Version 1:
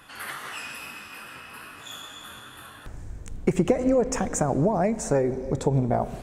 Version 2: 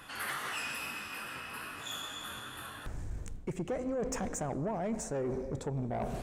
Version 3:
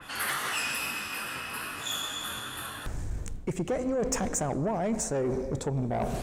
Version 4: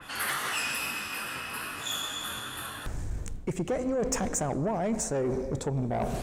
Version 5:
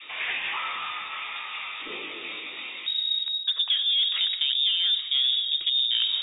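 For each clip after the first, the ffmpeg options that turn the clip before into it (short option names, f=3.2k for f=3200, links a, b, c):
-af "areverse,acompressor=threshold=-29dB:ratio=10,areverse,asoftclip=type=tanh:threshold=-28dB"
-af "adynamicequalizer=threshold=0.002:dfrequency=3300:dqfactor=0.7:tfrequency=3300:tqfactor=0.7:attack=5:release=100:ratio=0.375:range=2:mode=boostabove:tftype=highshelf,volume=5.5dB"
-af anull
-af "lowpass=f=3.2k:t=q:w=0.5098,lowpass=f=3.2k:t=q:w=0.6013,lowpass=f=3.2k:t=q:w=0.9,lowpass=f=3.2k:t=q:w=2.563,afreqshift=-3800,aemphasis=mode=production:type=75fm"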